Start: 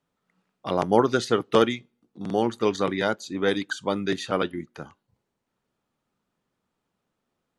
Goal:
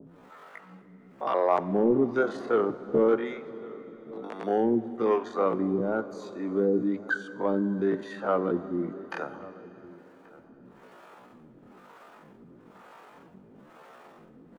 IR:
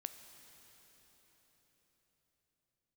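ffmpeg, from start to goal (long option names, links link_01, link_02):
-filter_complex "[0:a]acrossover=split=2000[link_01][link_02];[link_01]asoftclip=type=tanh:threshold=-15dB[link_03];[link_02]acompressor=threshold=-45dB:ratio=6[link_04];[link_03][link_04]amix=inputs=2:normalize=0,adynamicequalizer=threshold=0.00316:dfrequency=2400:dqfactor=1.7:tfrequency=2400:tqfactor=1.7:attack=5:release=100:ratio=0.375:range=4:mode=cutabove:tftype=bell,acompressor=mode=upward:threshold=-28dB:ratio=2.5,acrossover=split=430[link_05][link_06];[link_05]aeval=exprs='val(0)*(1-1/2+1/2*cos(2*PI*2*n/s))':channel_layout=same[link_07];[link_06]aeval=exprs='val(0)*(1-1/2-1/2*cos(2*PI*2*n/s))':channel_layout=same[link_08];[link_07][link_08]amix=inputs=2:normalize=0,asplit=2[link_09][link_10];[link_10]adelay=583.1,volume=-20dB,highshelf=frequency=4000:gain=-13.1[link_11];[link_09][link_11]amix=inputs=2:normalize=0,atempo=0.52,acrossover=split=180 2200:gain=0.224 1 0.178[link_12][link_13][link_14];[link_12][link_13][link_14]amix=inputs=3:normalize=0,bandreject=frequency=50:width_type=h:width=6,bandreject=frequency=100:width_type=h:width=6,asplit=2[link_15][link_16];[1:a]atrim=start_sample=2205[link_17];[link_16][link_17]afir=irnorm=-1:irlink=0,volume=5dB[link_18];[link_15][link_18]amix=inputs=2:normalize=0"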